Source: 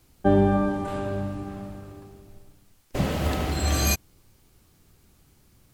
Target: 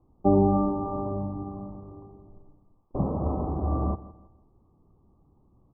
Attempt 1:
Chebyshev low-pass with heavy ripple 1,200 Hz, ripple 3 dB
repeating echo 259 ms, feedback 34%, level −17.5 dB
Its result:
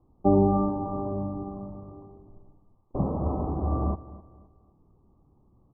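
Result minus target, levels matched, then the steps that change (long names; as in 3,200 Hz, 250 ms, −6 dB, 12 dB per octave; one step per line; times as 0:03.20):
echo 96 ms late
change: repeating echo 163 ms, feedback 34%, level −17.5 dB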